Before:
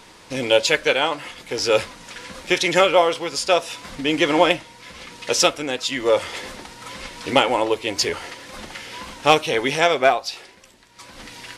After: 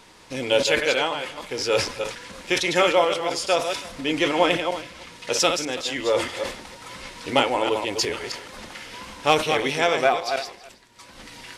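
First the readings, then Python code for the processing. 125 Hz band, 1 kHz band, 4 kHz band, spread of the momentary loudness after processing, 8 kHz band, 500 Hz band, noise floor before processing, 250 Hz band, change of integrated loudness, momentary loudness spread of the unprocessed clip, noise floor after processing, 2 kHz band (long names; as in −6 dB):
−2.0 dB, −2.5 dB, −2.5 dB, 17 LU, −2.5 dB, −3.0 dB, −47 dBFS, −3.0 dB, −3.5 dB, 19 LU, −48 dBFS, −2.5 dB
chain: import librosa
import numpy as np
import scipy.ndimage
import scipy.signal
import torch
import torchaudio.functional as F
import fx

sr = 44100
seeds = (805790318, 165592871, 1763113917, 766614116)

p1 = fx.reverse_delay(x, sr, ms=157, wet_db=-6.5)
p2 = p1 + fx.echo_single(p1, sr, ms=327, db=-21.5, dry=0)
p3 = fx.sustainer(p2, sr, db_per_s=110.0)
y = p3 * 10.0 ** (-4.0 / 20.0)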